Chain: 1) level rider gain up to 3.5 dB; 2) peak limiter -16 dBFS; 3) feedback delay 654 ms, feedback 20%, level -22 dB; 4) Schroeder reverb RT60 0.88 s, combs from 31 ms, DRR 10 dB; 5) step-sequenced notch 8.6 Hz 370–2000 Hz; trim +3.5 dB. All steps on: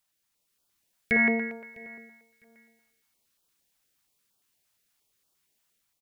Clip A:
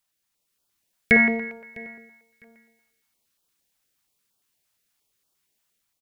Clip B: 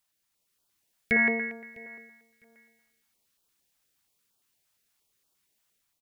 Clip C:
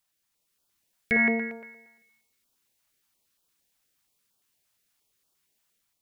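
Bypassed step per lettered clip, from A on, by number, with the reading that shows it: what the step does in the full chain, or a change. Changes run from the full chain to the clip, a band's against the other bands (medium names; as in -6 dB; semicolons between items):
2, crest factor change +4.0 dB; 4, 250 Hz band -2.0 dB; 3, momentary loudness spread change -5 LU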